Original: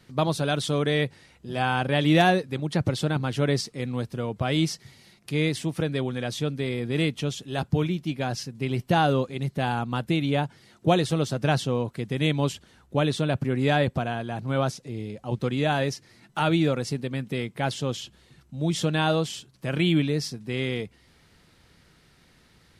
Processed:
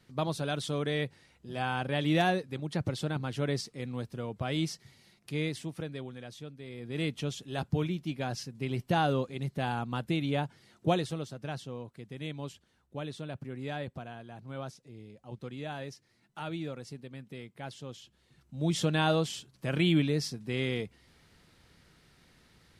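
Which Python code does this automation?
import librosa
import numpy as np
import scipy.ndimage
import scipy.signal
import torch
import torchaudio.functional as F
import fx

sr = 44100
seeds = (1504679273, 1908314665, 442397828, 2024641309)

y = fx.gain(x, sr, db=fx.line((5.36, -7.5), (6.59, -18.0), (7.11, -6.0), (10.89, -6.0), (11.34, -15.0), (18.03, -15.0), (18.67, -3.5)))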